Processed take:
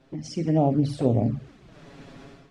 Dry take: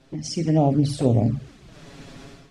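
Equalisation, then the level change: bass shelf 130 Hz -5.5 dB; treble shelf 3.6 kHz -11 dB; -1.0 dB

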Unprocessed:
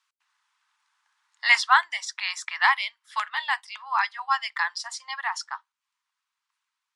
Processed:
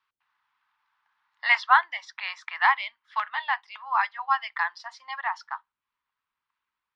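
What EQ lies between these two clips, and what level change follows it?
distance through air 280 m; bass shelf 500 Hz +10.5 dB; 0.0 dB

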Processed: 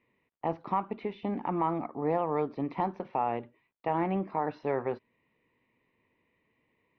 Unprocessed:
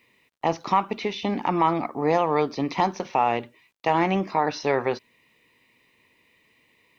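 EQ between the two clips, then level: distance through air 440 m; peaking EQ 3.4 kHz -5 dB 2.2 oct; -5.5 dB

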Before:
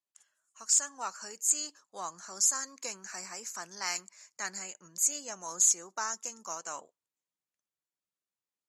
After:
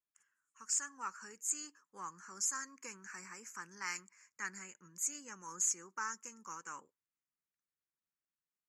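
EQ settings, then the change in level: static phaser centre 1.6 kHz, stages 4; dynamic bell 4.5 kHz, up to +4 dB, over -43 dBFS, Q 1.3; treble shelf 7 kHz -11.5 dB; -1.5 dB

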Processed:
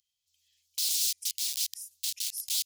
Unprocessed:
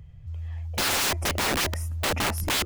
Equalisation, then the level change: inverse Chebyshev high-pass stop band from 1.2 kHz, stop band 60 dB; 0.0 dB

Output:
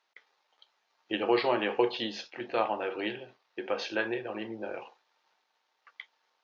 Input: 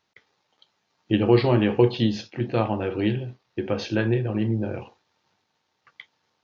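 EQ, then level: high-pass 600 Hz 12 dB/octave; treble shelf 5.6 kHz -9 dB; 0.0 dB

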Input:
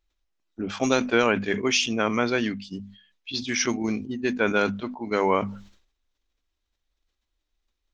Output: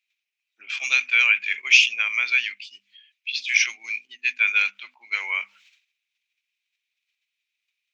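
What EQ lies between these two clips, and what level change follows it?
resonant high-pass 2.4 kHz, resonance Q 6.8; -1.5 dB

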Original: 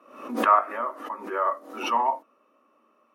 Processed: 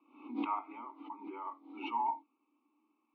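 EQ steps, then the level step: vowel filter u; Butterworth band-stop 1.8 kHz, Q 4.1; four-pole ladder low-pass 4.3 kHz, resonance 60%; +9.5 dB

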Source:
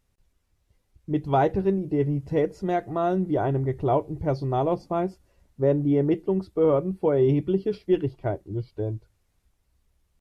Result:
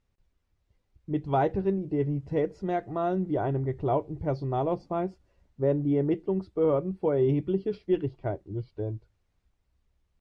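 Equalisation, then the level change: distance through air 85 m; -3.5 dB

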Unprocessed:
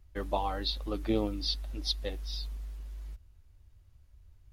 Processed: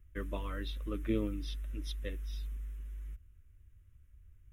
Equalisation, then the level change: static phaser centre 1.9 kHz, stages 4; -1.0 dB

